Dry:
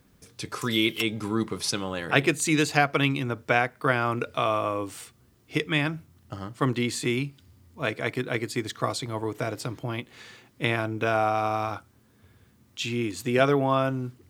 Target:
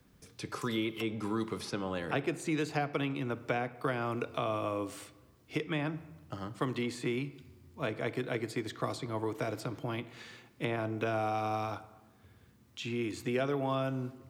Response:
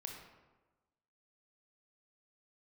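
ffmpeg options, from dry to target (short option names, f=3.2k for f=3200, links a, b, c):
-filter_complex "[0:a]acrossover=split=130|420|1100|2300[a][b][c][d][e];[a]acompressor=threshold=-45dB:ratio=4[f];[b]acompressor=threshold=-32dB:ratio=4[g];[c]acompressor=threshold=-32dB:ratio=4[h];[d]acompressor=threshold=-43dB:ratio=4[i];[e]acompressor=threshold=-42dB:ratio=4[j];[f][g][h][i][j]amix=inputs=5:normalize=0,asplit=2[k][l];[1:a]atrim=start_sample=2205,lowpass=6.9k[m];[l][m]afir=irnorm=-1:irlink=0,volume=-6.5dB[n];[k][n]amix=inputs=2:normalize=0,volume=-5dB"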